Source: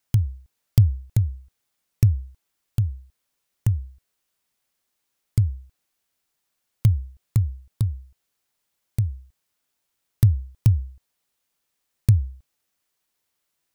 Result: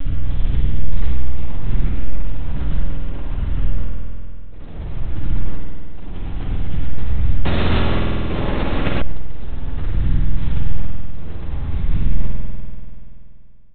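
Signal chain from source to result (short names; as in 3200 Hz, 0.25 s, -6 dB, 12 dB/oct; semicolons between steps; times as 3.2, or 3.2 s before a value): spectral swells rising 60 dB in 2.31 s; limiter -12 dBFS, peak gain reduction 10.5 dB; echo 0.124 s -14 dB; bit-crush 5-bit; monotone LPC vocoder at 8 kHz 280 Hz; low shelf 69 Hz +11.5 dB; spring tank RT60 2.6 s, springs 48 ms, chirp 40 ms, DRR -1.5 dB; 7.45–9.02 spectral compressor 2:1; gain -7.5 dB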